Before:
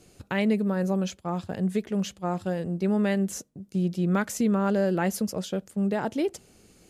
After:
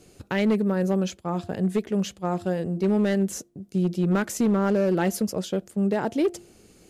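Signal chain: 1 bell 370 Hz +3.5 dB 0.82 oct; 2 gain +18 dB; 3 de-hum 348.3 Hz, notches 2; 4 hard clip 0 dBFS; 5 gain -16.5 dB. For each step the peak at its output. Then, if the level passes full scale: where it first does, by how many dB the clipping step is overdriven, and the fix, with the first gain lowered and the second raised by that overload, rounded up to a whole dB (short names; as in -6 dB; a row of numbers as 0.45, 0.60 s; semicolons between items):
-13.0, +5.0, +5.5, 0.0, -16.5 dBFS; step 2, 5.5 dB; step 2 +12 dB, step 5 -10.5 dB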